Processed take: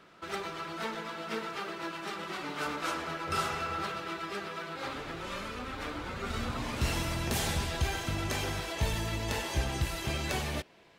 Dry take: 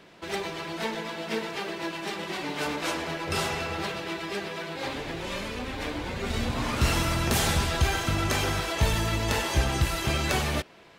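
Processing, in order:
parametric band 1,300 Hz +12 dB 0.32 octaves, from 0:06.57 −3.5 dB
level −6.5 dB

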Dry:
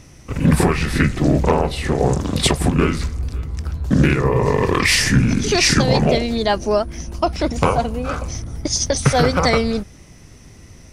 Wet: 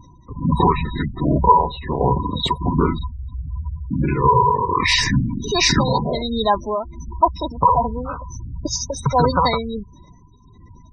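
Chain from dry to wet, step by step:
amplitude tremolo 1.4 Hz, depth 52%
hollow resonant body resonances 980/3,800 Hz, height 18 dB, ringing for 45 ms
gate on every frequency bin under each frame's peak −15 dB strong
level −1 dB

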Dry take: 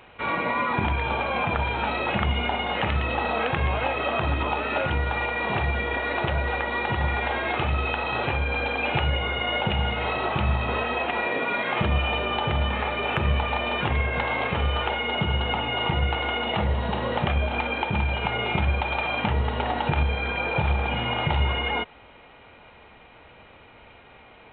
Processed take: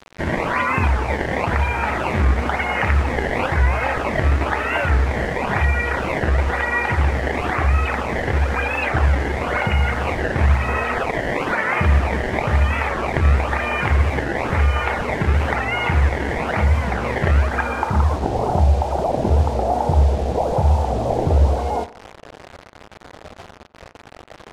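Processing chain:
parametric band 80 Hz +14.5 dB 0.34 octaves
notch filter 3,500 Hz, Q 6.8
in parallel at −2.5 dB: downward compressor 5 to 1, threshold −32 dBFS, peak gain reduction 17.5 dB
on the sum: sample-and-hold swept by an LFO 20×, swing 160% 1 Hz
low-pass filter sweep 2,000 Hz → 700 Hz, 0:17.38–0:18.60
bit reduction 6 bits
high-frequency loss of the air 67 metres
tape delay 85 ms, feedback 44%, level −17 dB, low-pass 3,000 Hz
wow of a warped record 45 rpm, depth 160 cents
level +1 dB

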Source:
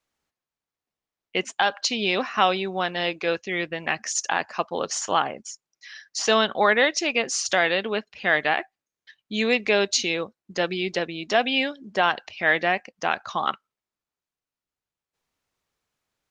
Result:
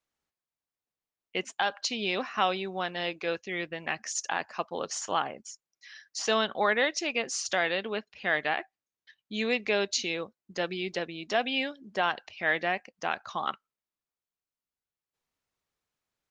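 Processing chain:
0:07.48–0:10.06: low-pass filter 7,900 Hz 24 dB per octave
level −6.5 dB

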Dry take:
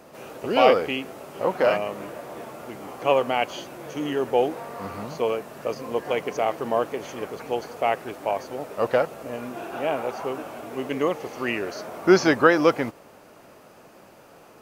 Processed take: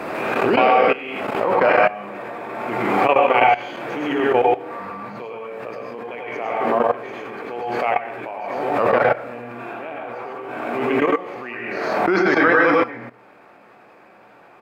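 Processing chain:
double-tracking delay 25 ms −11.5 dB
convolution reverb RT60 0.50 s, pre-delay 88 ms, DRR −2.5 dB
output level in coarse steps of 17 dB
drawn EQ curve 170 Hz 0 dB, 1,000 Hz +10 dB, 2,300 Hz +9 dB, 8,900 Hz −5 dB
background raised ahead of every attack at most 28 dB per second
level −4.5 dB

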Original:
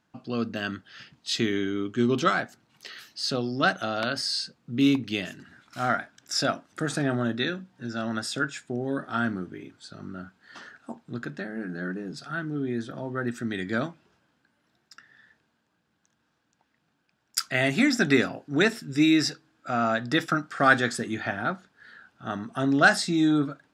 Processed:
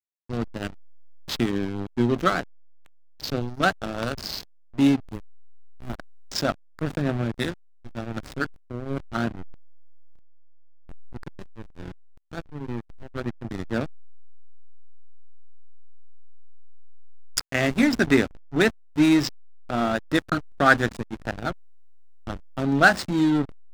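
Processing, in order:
0:05.12–0:05.98: running median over 41 samples
slack as between gear wheels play −20.5 dBFS
level +3 dB

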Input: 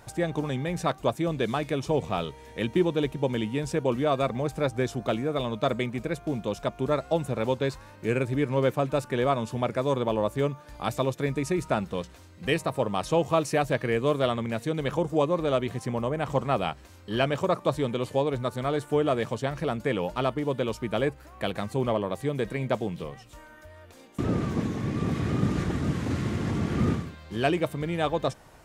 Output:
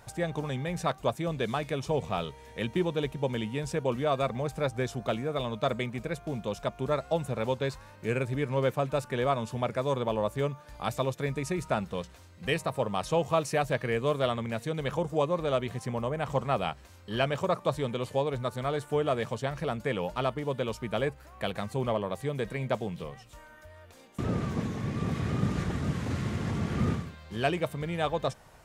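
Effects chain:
parametric band 310 Hz −6 dB 0.58 octaves
level −2 dB

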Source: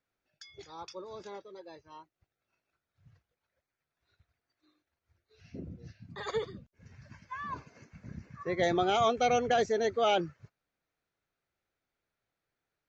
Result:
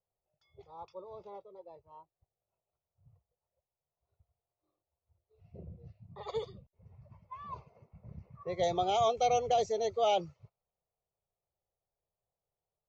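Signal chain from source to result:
low-pass that shuts in the quiet parts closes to 990 Hz, open at −27.5 dBFS
phaser with its sweep stopped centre 670 Hz, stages 4

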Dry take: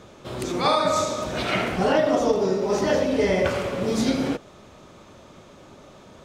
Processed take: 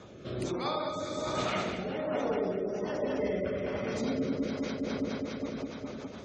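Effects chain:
high-pass filter 55 Hz
delay that swaps between a low-pass and a high-pass 103 ms, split 850 Hz, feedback 87%, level −2 dB
reversed playback
downward compressor 6 to 1, threshold −28 dBFS, peak gain reduction 14.5 dB
reversed playback
gate on every frequency bin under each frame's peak −30 dB strong
rotating-speaker cabinet horn 1.2 Hz, later 7 Hz, at 0:04.41

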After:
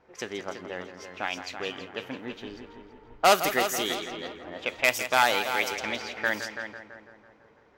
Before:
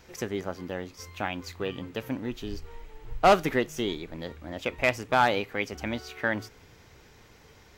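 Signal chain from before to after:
RIAA equalisation recording
echo machine with several playback heads 166 ms, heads first and second, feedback 49%, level −11 dB
low-pass that shuts in the quiet parts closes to 890 Hz, open at −23.5 dBFS

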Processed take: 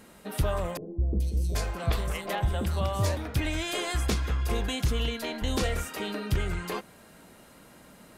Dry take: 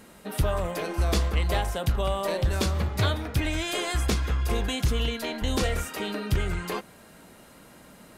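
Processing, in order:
0:00.77–0:03.17: three-band delay without the direct sound lows, highs, mids 430/780 ms, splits 420/4,000 Hz
level −2 dB

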